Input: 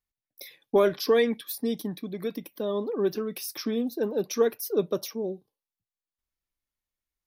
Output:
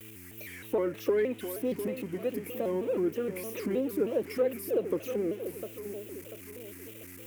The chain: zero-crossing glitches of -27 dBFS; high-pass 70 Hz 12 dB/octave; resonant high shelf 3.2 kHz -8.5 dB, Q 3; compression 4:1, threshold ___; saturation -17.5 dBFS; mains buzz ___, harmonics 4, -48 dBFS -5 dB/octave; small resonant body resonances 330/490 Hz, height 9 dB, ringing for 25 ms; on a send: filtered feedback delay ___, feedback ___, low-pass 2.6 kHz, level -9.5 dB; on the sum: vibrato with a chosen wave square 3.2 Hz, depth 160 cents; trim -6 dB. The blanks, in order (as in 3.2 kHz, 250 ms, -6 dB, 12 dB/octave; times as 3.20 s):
-24 dBFS, 100 Hz, 697 ms, 44%